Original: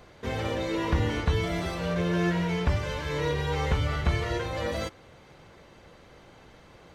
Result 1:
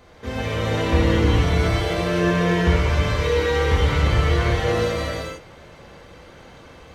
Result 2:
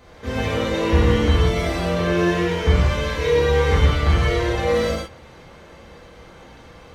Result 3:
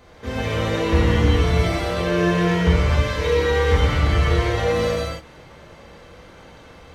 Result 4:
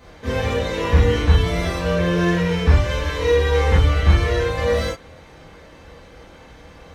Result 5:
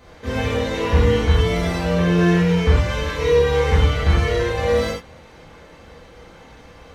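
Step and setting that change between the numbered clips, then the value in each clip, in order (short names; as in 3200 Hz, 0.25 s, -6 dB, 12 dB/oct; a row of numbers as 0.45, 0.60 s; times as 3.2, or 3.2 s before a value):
non-linear reverb, gate: 520, 210, 340, 90, 140 ms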